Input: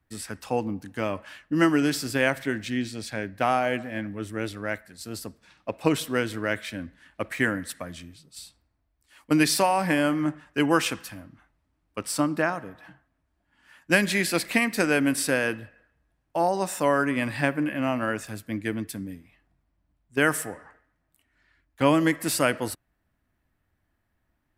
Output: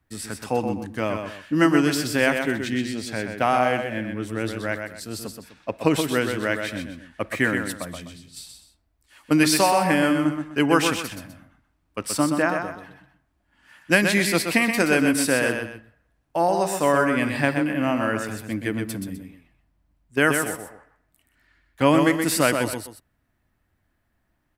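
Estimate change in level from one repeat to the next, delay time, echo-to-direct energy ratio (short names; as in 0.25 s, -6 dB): -10.0 dB, 0.126 s, -5.5 dB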